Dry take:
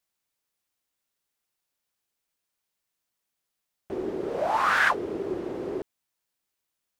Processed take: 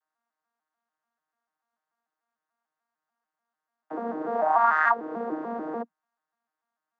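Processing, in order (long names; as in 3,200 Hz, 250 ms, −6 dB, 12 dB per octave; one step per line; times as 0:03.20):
vocoder with an arpeggio as carrier bare fifth, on D#3, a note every 147 ms
Chebyshev high-pass filter 200 Hz, order 4
flat-topped bell 1,100 Hz +15.5 dB
downward compressor 2 to 1, threshold −18 dBFS, peak gain reduction 7 dB
level −4 dB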